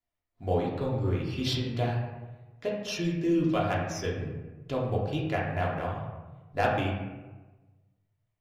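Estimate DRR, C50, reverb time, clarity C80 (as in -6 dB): -4.5 dB, 2.0 dB, 1.2 s, 5.0 dB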